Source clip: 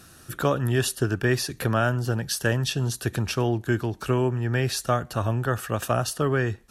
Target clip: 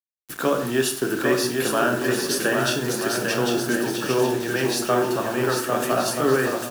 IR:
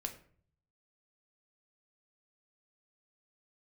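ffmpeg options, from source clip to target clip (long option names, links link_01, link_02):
-filter_complex "[0:a]aecho=1:1:800|1280|1568|1741|1844:0.631|0.398|0.251|0.158|0.1,asplit=2[link_01][link_02];[link_02]asoftclip=type=tanh:threshold=-19dB,volume=-11.5dB[link_03];[link_01][link_03]amix=inputs=2:normalize=0,highpass=frequency=200:width=0.5412,highpass=frequency=200:width=1.3066[link_04];[1:a]atrim=start_sample=2205,afade=type=out:start_time=0.17:duration=0.01,atrim=end_sample=7938,asetrate=29547,aresample=44100[link_05];[link_04][link_05]afir=irnorm=-1:irlink=0,acrusher=bits=5:mix=0:aa=0.000001"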